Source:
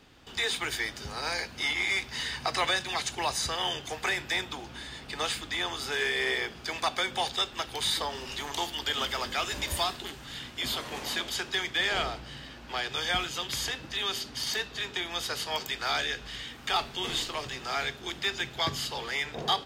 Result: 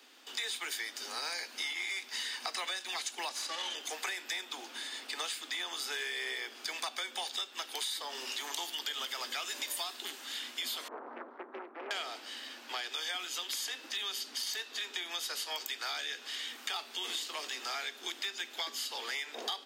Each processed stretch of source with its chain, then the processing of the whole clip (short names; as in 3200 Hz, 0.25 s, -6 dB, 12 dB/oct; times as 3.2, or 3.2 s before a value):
3.29–3.75 minimum comb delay 3.5 ms + air absorption 56 m
10.88–11.91 Chebyshev low-pass 1200 Hz, order 4 + Doppler distortion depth 0.71 ms
whole clip: steep high-pass 230 Hz 96 dB/oct; tilt +2.5 dB/oct; compressor, threshold -32 dBFS; gain -2.5 dB